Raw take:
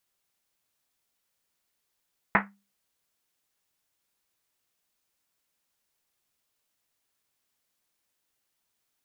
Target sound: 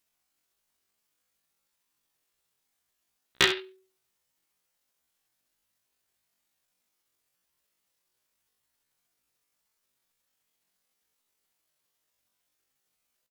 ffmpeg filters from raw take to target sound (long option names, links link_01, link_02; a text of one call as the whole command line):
ffmpeg -i in.wav -filter_complex "[0:a]asetrate=83250,aresample=44100,atempo=0.529732,aeval=exprs='0.224*(abs(mod(val(0)/0.224+3,4)-2)-1)':channel_layout=same,asplit=2[link_01][link_02];[link_02]aecho=0:1:16|51:0.282|0.282[link_03];[link_01][link_03]amix=inputs=2:normalize=0,atempo=0.68,volume=3dB" out.wav